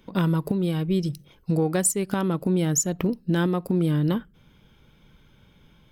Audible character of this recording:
background noise floor −58 dBFS
spectral slope −5.0 dB per octave

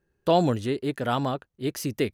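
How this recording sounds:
background noise floor −75 dBFS
spectral slope −5.5 dB per octave

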